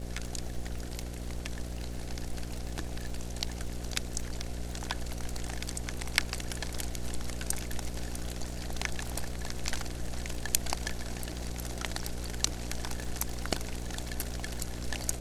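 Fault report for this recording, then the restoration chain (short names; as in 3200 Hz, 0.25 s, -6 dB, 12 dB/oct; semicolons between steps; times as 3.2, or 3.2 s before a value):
buzz 60 Hz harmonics 9 -39 dBFS
crackle 37/s -39 dBFS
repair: de-click; de-hum 60 Hz, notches 9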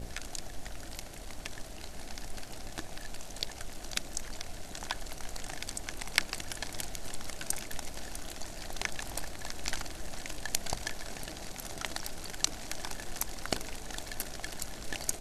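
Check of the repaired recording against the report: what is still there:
none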